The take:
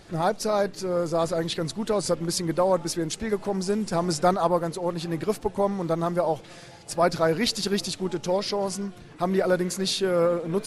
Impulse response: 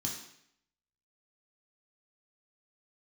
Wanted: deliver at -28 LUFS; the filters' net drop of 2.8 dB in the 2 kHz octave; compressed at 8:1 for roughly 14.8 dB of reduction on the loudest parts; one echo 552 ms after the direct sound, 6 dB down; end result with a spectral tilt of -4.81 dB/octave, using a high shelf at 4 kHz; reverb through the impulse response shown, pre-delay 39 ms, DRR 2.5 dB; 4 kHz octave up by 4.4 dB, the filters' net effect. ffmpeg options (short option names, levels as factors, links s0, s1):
-filter_complex "[0:a]equalizer=f=2000:t=o:g=-5,highshelf=f=4000:g=-4.5,equalizer=f=4000:t=o:g=9,acompressor=threshold=0.0224:ratio=8,aecho=1:1:552:0.501,asplit=2[s0][s1];[1:a]atrim=start_sample=2205,adelay=39[s2];[s1][s2]afir=irnorm=-1:irlink=0,volume=0.668[s3];[s0][s3]amix=inputs=2:normalize=0,volume=1.68"